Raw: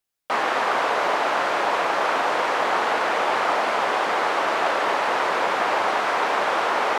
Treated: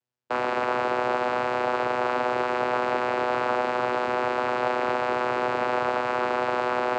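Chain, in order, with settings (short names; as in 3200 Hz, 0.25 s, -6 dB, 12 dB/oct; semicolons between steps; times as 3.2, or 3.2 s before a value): vocoder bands 8, saw 124 Hz; gain -2.5 dB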